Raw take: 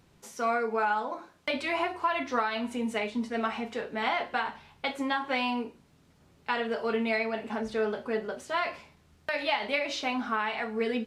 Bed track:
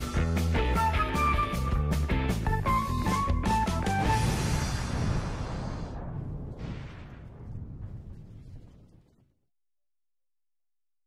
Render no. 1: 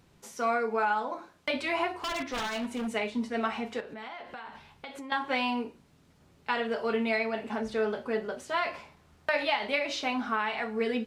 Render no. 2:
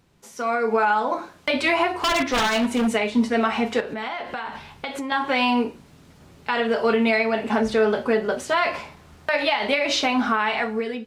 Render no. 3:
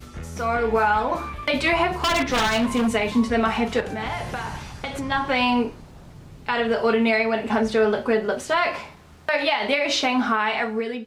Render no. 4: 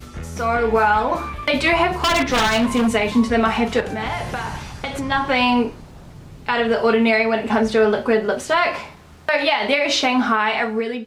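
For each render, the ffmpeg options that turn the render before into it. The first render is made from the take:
-filter_complex "[0:a]asettb=1/sr,asplit=3[s0][s1][s2];[s0]atrim=end=1.974[s3];[s1]atrim=start=1.97:end=2.9,asetpts=PTS-STARTPTS,afade=t=in:d=0.004:c=qsin,afade=t=out:st=0.926:d=0.004:c=qsin,aeval=exprs='0.0422*(abs(mod(val(0)/0.0422+3,4)-2)-1)':c=same[s4];[s2]atrim=start=2.896[s5];[s3][s4]acrossfade=d=0.004:c1=hsin:c2=qsin[s6];[s6][s5]acrossfade=d=0.004:c1=qsin:c2=hsin,asettb=1/sr,asplit=3[s7][s8][s9];[s7]atrim=end=3.804[s10];[s8]atrim=start=3.8:end=5.12,asetpts=PTS-STARTPTS,afade=t=in:d=0.004:c=qsin,afade=t=out:st=1.316:d=0.004:c=qsin,acompressor=threshold=0.0112:ratio=6:attack=3.2:release=140:knee=1:detection=peak[s11];[s9]atrim=start=5.116[s12];[s10][s11]acrossfade=d=0.004:c1=hsin:c2=qsin[s13];[s13][s12]acrossfade=d=0.004:c1=qsin:c2=hsin,asettb=1/sr,asplit=3[s14][s15][s16];[s14]atrim=end=8.744[s17];[s15]atrim=start=8.74:end=9.45,asetpts=PTS-STARTPTS,afade=t=in:d=0.004:c=qsin,afade=t=out:st=0.706:d=0.004:c=qsin,equalizer=f=930:w=0.65:g=5.5[s18];[s16]atrim=start=9.446[s19];[s17][s18]acrossfade=d=0.004:c1=hsin:c2=qsin[s20];[s20][s19]acrossfade=d=0.004:c1=qsin:c2=hsin"
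-af "alimiter=limit=0.075:level=0:latency=1:release=172,dynaudnorm=f=150:g=7:m=3.98"
-filter_complex "[1:a]volume=0.398[s0];[0:a][s0]amix=inputs=2:normalize=0"
-af "volume=1.5"

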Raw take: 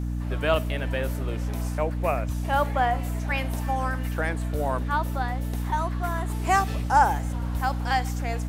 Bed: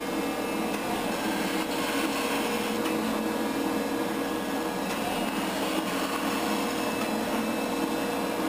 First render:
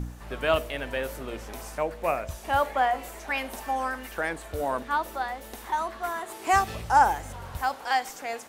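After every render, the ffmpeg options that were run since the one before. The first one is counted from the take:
-af "bandreject=f=60:t=h:w=4,bandreject=f=120:t=h:w=4,bandreject=f=180:t=h:w=4,bandreject=f=240:t=h:w=4,bandreject=f=300:t=h:w=4,bandreject=f=360:t=h:w=4,bandreject=f=420:t=h:w=4,bandreject=f=480:t=h:w=4,bandreject=f=540:t=h:w=4,bandreject=f=600:t=h:w=4,bandreject=f=660:t=h:w=4"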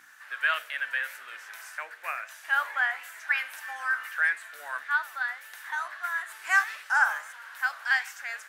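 -af "highpass=f=1600:t=q:w=4.8,flanger=delay=8.5:depth=8.1:regen=84:speed=1.6:shape=sinusoidal"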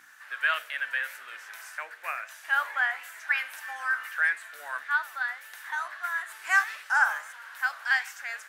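-af anull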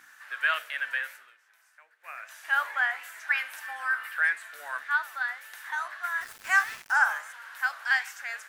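-filter_complex "[0:a]asettb=1/sr,asplit=3[s0][s1][s2];[s0]atrim=end=3.674[s3];[s1]atrim=start=3.67:end=4.24,asetpts=PTS-STARTPTS,afade=t=in:d=0.004:c=qsin,afade=t=out:st=0.566:d=0.004:c=qsin,equalizer=f=6300:w=4:g=-9.5[s4];[s2]atrim=start=4.236[s5];[s3][s4]acrossfade=d=0.004:c1=hsin:c2=qsin[s6];[s6][s5]acrossfade=d=0.004:c1=qsin:c2=hsin,asplit=3[s7][s8][s9];[s7]afade=t=out:st=6.2:d=0.02[s10];[s8]aeval=exprs='val(0)*gte(abs(val(0)),0.00891)':c=same,afade=t=in:st=6.2:d=0.02,afade=t=out:st=6.95:d=0.02[s11];[s9]afade=t=in:st=6.95:d=0.02[s12];[s10][s11][s12]amix=inputs=3:normalize=0,asplit=3[s13][s14][s15];[s13]atrim=end=1.35,asetpts=PTS-STARTPTS,afade=t=out:st=0.94:d=0.41:silence=0.1[s16];[s14]atrim=start=1.35:end=1.99,asetpts=PTS-STARTPTS,volume=0.1[s17];[s15]atrim=start=1.99,asetpts=PTS-STARTPTS,afade=t=in:d=0.41:silence=0.1[s18];[s16][s17][s18]concat=n=3:v=0:a=1"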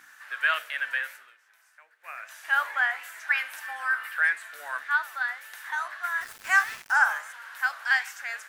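-af "volume=1.19"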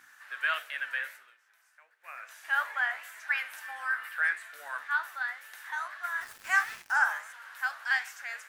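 -af "flanger=delay=7.2:depth=8.6:regen=75:speed=1.5:shape=triangular"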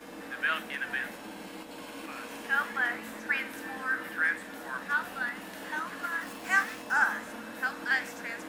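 -filter_complex "[1:a]volume=0.178[s0];[0:a][s0]amix=inputs=2:normalize=0"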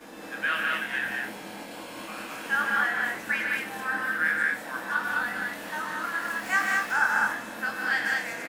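-filter_complex "[0:a]asplit=2[s0][s1];[s1]adelay=24,volume=0.631[s2];[s0][s2]amix=inputs=2:normalize=0,aecho=1:1:96.21|148.7|207:0.316|0.562|0.794"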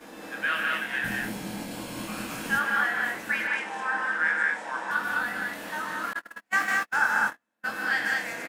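-filter_complex "[0:a]asettb=1/sr,asplit=3[s0][s1][s2];[s0]atrim=end=1.044[s3];[s1]atrim=start=1.04:end=2.59,asetpts=PTS-STARTPTS,afade=t=in:d=0.004:c=qsin,afade=t=out:st=1.546:d=0.004:c=qsin,bass=f=250:g=15,treble=f=4000:g=6[s4];[s2]atrim=start=2.586[s5];[s3][s4]acrossfade=d=0.004:c1=hsin:c2=qsin[s6];[s6][s5]acrossfade=d=0.004:c1=qsin:c2=hsin,asettb=1/sr,asplit=3[s7][s8][s9];[s7]atrim=end=3.474[s10];[s8]atrim=start=3.47:end=4.91,asetpts=PTS-STARTPTS,afade=t=in:d=0.004:c=qsin,afade=t=out:st=1.436:d=0.004:c=qsin,highpass=220,equalizer=f=270:t=q:w=4:g=-6,equalizer=f=920:t=q:w=4:g=9,equalizer=f=4200:t=q:w=4:g=-5,lowpass=f=8200:w=0.5412,lowpass=f=8200:w=1.3066[s11];[s9]atrim=start=4.906[s12];[s10][s11]acrossfade=d=0.004:c1=hsin:c2=qsin[s13];[s13][s12]acrossfade=d=0.004:c1=qsin:c2=hsin,asettb=1/sr,asplit=3[s14][s15][s16];[s14]atrim=end=6.134[s17];[s15]atrim=start=6.13:end=7.66,asetpts=PTS-STARTPTS,afade=t=in:d=0.004:c=qsin,afade=t=out:st=1.526:d=0.004:c=qsin,agate=range=0.00708:threshold=0.0355:ratio=16:release=100:detection=peak[s18];[s16]atrim=start=7.656[s19];[s17][s18]acrossfade=d=0.004:c1=hsin:c2=qsin[s20];[s20][s19]acrossfade=d=0.004:c1=qsin:c2=hsin"

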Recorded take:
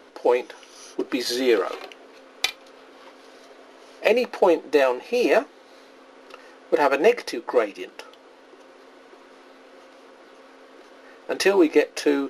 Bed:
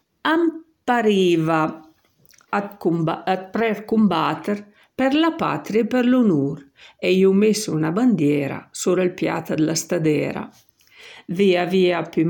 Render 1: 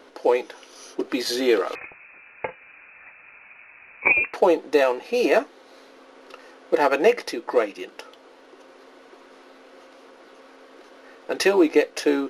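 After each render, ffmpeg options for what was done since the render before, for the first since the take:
-filter_complex "[0:a]asettb=1/sr,asplit=3[s0][s1][s2];[s0]atrim=end=1.754[s3];[s1]atrim=start=1.75:end=4.34,asetpts=PTS-STARTPTS,afade=t=in:d=0.004:c=qsin,afade=t=out:st=2.586:d=0.004:c=qsin,lowpass=f=2500:t=q:w=0.5098,lowpass=f=2500:t=q:w=0.6013,lowpass=f=2500:t=q:w=0.9,lowpass=f=2500:t=q:w=2.563,afreqshift=-2900[s4];[s2]atrim=start=4.336[s5];[s3][s4]acrossfade=d=0.004:c1=hsin:c2=qsin[s6];[s6][s5]acrossfade=d=0.004:c1=qsin:c2=hsin"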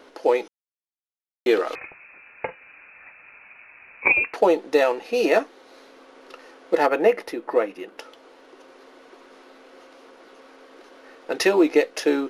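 -filter_complex "[0:a]asettb=1/sr,asplit=3[s0][s1][s2];[s0]atrim=end=6.864[s3];[s1]atrim=start=6.86:end=7.98,asetpts=PTS-STARTPTS,afade=t=in:d=0.004:c=qsin,afade=t=out:st=1.116:d=0.004:c=qsin,equalizer=f=5500:w=0.65:g=-10[s4];[s2]atrim=start=7.976[s5];[s3][s4]acrossfade=d=0.004:c1=hsin:c2=qsin[s6];[s6][s5]acrossfade=d=0.004:c1=qsin:c2=hsin,asplit=3[s7][s8][s9];[s7]atrim=end=0.48,asetpts=PTS-STARTPTS,afade=t=out:st=0.476:d=0.004:c=hsin[s10];[s8]atrim=start=0.48:end=1.46,asetpts=PTS-STARTPTS,volume=0[s11];[s9]atrim=start=1.46,asetpts=PTS-STARTPTS,afade=t=in:d=0.004:c=hsin[s12];[s10][s11][s12]concat=n=3:v=0:a=1"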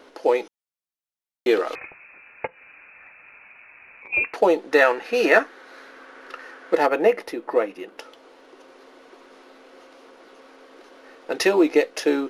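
-filter_complex "[0:a]asplit=3[s0][s1][s2];[s0]afade=t=out:st=2.46:d=0.02[s3];[s1]acompressor=threshold=0.00794:ratio=8:attack=3.2:release=140:knee=1:detection=peak,afade=t=in:st=2.46:d=0.02,afade=t=out:st=4.12:d=0.02[s4];[s2]afade=t=in:st=4.12:d=0.02[s5];[s3][s4][s5]amix=inputs=3:normalize=0,asettb=1/sr,asplit=3[s6][s7][s8];[s6]atrim=end=4.714[s9];[s7]atrim=start=4.71:end=6.75,asetpts=PTS-STARTPTS,afade=t=in:d=0.004:c=qsin,afade=t=out:st=2.036:d=0.004:c=qsin,equalizer=f=1600:w=1.6:g=12[s10];[s8]atrim=start=6.746[s11];[s9][s10]acrossfade=d=0.004:c1=hsin:c2=qsin[s12];[s12][s11]acrossfade=d=0.004:c1=qsin:c2=hsin"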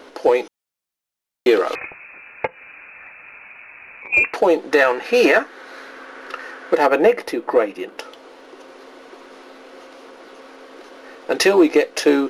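-af "alimiter=limit=0.316:level=0:latency=1:release=231,acontrast=79"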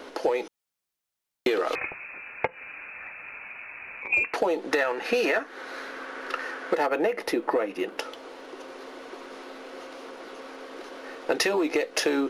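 -filter_complex "[0:a]acrossover=split=600[s0][s1];[s0]alimiter=limit=0.211:level=0:latency=1[s2];[s2][s1]amix=inputs=2:normalize=0,acompressor=threshold=0.0891:ratio=10"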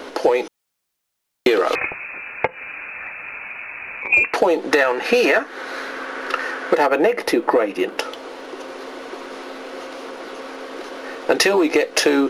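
-af "volume=2.66,alimiter=limit=0.891:level=0:latency=1"

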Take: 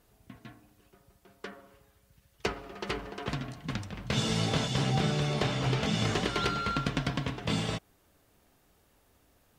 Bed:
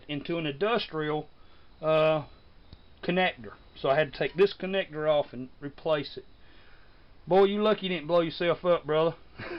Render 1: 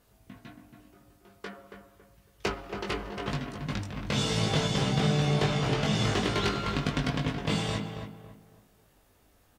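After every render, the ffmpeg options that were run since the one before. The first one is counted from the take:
-filter_complex "[0:a]asplit=2[s0][s1];[s1]adelay=20,volume=0.631[s2];[s0][s2]amix=inputs=2:normalize=0,asplit=2[s3][s4];[s4]adelay=277,lowpass=f=1700:p=1,volume=0.473,asplit=2[s5][s6];[s6]adelay=277,lowpass=f=1700:p=1,volume=0.33,asplit=2[s7][s8];[s8]adelay=277,lowpass=f=1700:p=1,volume=0.33,asplit=2[s9][s10];[s10]adelay=277,lowpass=f=1700:p=1,volume=0.33[s11];[s3][s5][s7][s9][s11]amix=inputs=5:normalize=0"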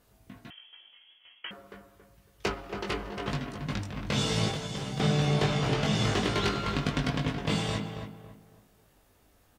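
-filter_complex "[0:a]asettb=1/sr,asplit=3[s0][s1][s2];[s0]atrim=end=0.504[s3];[s1]atrim=start=0.5:end=1.51,asetpts=PTS-STARTPTS,afade=t=in:d=0.004:c=qsin,afade=t=out:st=1.006:d=0.004:c=qsin,lowpass=f=2900:t=q:w=0.5098,lowpass=f=2900:t=q:w=0.6013,lowpass=f=2900:t=q:w=0.9,lowpass=f=2900:t=q:w=2.563,afreqshift=-3400[s4];[s2]atrim=start=1.506[s5];[s3][s4]acrossfade=d=0.004:c1=hsin:c2=qsin[s6];[s6][s5]acrossfade=d=0.004:c1=qsin:c2=hsin,asettb=1/sr,asplit=3[s7][s8][s9];[s7]atrim=end=4.504[s10];[s8]atrim=start=4.5:end=5,asetpts=PTS-STARTPTS,afade=t=in:d=0.004:c=qsin,afade=t=out:st=0.496:d=0.004:c=qsin,acrossover=split=82|7200[s11][s12][s13];[s11]acompressor=threshold=0.00355:ratio=4[s14];[s12]acompressor=threshold=0.02:ratio=4[s15];[s13]acompressor=threshold=0.00282:ratio=4[s16];[s14][s15][s16]amix=inputs=3:normalize=0[s17];[s9]atrim=start=4.996[s18];[s10][s17]acrossfade=d=0.004:c1=hsin:c2=qsin[s19];[s19][s18]acrossfade=d=0.004:c1=qsin:c2=hsin"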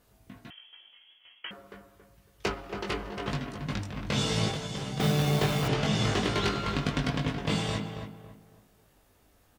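-filter_complex "[0:a]asettb=1/sr,asplit=3[s0][s1][s2];[s0]atrim=end=5.004[s3];[s1]atrim=start=5:end=5.68,asetpts=PTS-STARTPTS,afade=t=in:d=0.004:c=qsin,afade=t=out:st=0.676:d=0.004:c=qsin,acrusher=bits=7:dc=4:mix=0:aa=0.000001[s4];[s2]atrim=start=5.676[s5];[s3][s4]acrossfade=d=0.004:c1=hsin:c2=qsin[s6];[s6][s5]acrossfade=d=0.004:c1=qsin:c2=hsin"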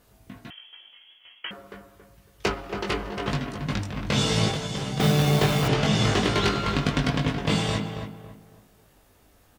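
-af "volume=1.78"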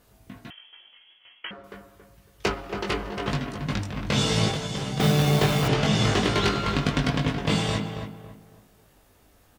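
-filter_complex "[0:a]asettb=1/sr,asplit=3[s0][s1][s2];[s0]atrim=end=0.524[s3];[s1]atrim=start=0.52:end=1.64,asetpts=PTS-STARTPTS,afade=t=in:d=0.004:c=qsin,afade=t=out:st=1.116:d=0.004:c=qsin,lowpass=3300[s4];[s2]atrim=start=1.636[s5];[s3][s4]acrossfade=d=0.004:c1=hsin:c2=qsin[s6];[s6][s5]acrossfade=d=0.004:c1=qsin:c2=hsin"

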